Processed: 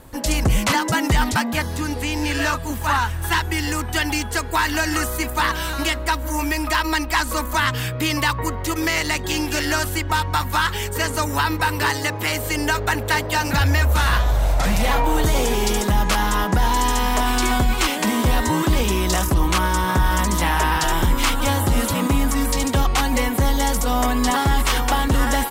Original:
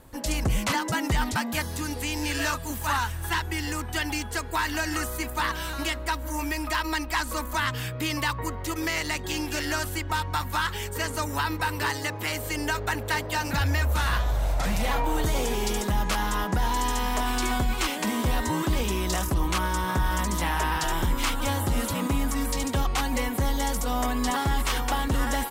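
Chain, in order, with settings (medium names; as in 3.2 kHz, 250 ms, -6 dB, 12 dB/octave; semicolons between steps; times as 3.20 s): 1.42–3.22 s: treble shelf 4.2 kHz -7 dB; trim +7 dB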